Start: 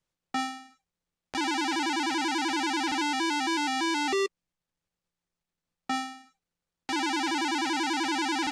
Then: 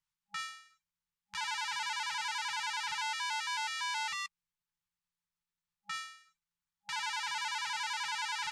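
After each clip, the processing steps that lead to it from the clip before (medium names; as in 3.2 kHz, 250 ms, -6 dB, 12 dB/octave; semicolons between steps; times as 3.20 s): FFT band-reject 200–820 Hz; bass shelf 460 Hz -5.5 dB; trim -5 dB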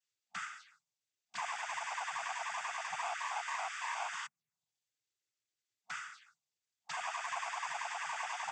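compression 1.5:1, threshold -43 dBFS, peak gain reduction 5 dB; touch-sensitive phaser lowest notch 160 Hz, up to 4.2 kHz, full sweep at -42.5 dBFS; noise-vocoded speech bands 16; trim +4.5 dB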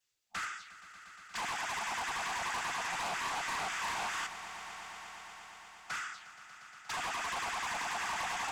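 octave divider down 2 oct, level -3 dB; in parallel at -8 dB: sine folder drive 12 dB, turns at -26 dBFS; on the sum: echo with a slow build-up 118 ms, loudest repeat 5, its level -17 dB; trim -4 dB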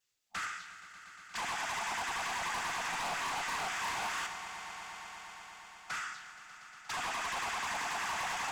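Schroeder reverb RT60 1.5 s, combs from 26 ms, DRR 8.5 dB; wavefolder -30.5 dBFS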